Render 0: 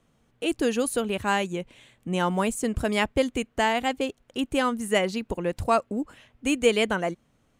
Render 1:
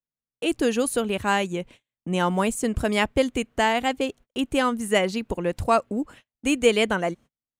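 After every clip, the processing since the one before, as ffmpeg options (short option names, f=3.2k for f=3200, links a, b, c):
-af "agate=range=-38dB:threshold=-46dB:ratio=16:detection=peak,volume=2dB"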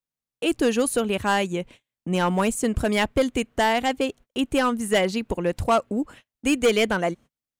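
-af "asoftclip=type=hard:threshold=-15dB,volume=1.5dB"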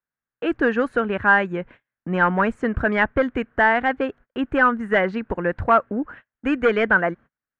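-af "lowpass=f=1.6k:t=q:w=4.2"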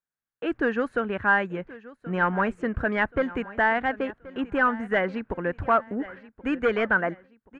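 -af "aecho=1:1:1078|2156|3234:0.119|0.044|0.0163,volume=-5dB"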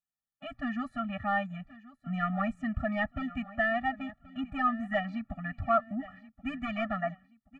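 -af "afftfilt=real='re*eq(mod(floor(b*sr/1024/280),2),0)':imag='im*eq(mod(floor(b*sr/1024/280),2),0)':win_size=1024:overlap=0.75,volume=-3dB"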